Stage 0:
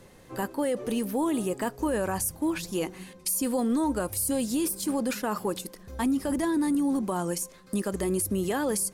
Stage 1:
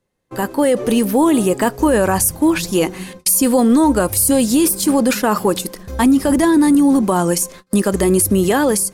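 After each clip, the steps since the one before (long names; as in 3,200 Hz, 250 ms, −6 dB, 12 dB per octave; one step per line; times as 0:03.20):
automatic gain control gain up to 5.5 dB
noise gate −43 dBFS, range −29 dB
level +8 dB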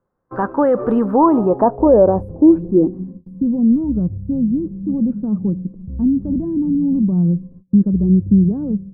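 flat-topped bell 3,800 Hz −14 dB 2.4 octaves
low-pass filter sweep 1,400 Hz → 180 Hz, 0:00.96–0:03.49
level −1 dB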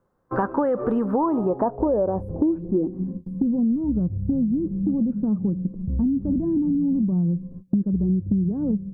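downward compressor 6 to 1, threshold −24 dBFS, peak gain reduction 17 dB
level +4 dB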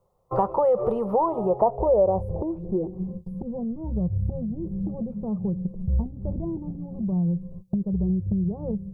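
phaser with its sweep stopped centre 660 Hz, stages 4
level +4 dB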